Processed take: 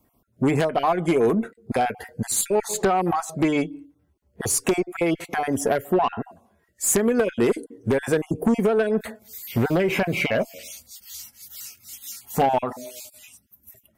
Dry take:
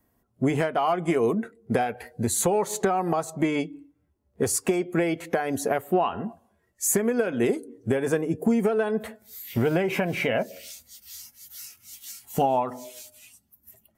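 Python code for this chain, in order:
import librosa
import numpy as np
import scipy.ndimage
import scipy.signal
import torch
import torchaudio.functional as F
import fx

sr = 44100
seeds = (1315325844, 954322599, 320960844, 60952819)

y = fx.spec_dropout(x, sr, seeds[0], share_pct=22)
y = fx.cheby_harmonics(y, sr, harmonics=(4, 5, 6, 8), levels_db=(-11, -23, -12, -27), full_scale_db=-9.5)
y = F.gain(torch.from_numpy(y), 2.0).numpy()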